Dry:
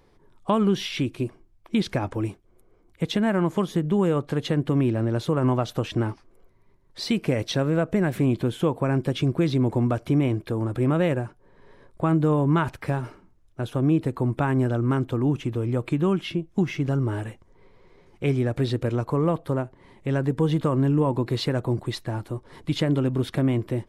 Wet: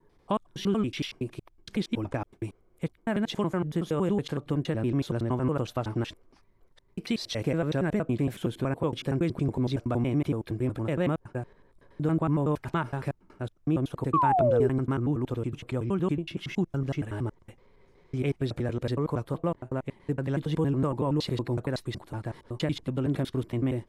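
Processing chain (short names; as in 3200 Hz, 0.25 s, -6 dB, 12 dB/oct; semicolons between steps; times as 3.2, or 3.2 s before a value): slices in reverse order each 93 ms, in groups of 3; painted sound fall, 14.13–14.68, 380–1200 Hz -18 dBFS; gain -5 dB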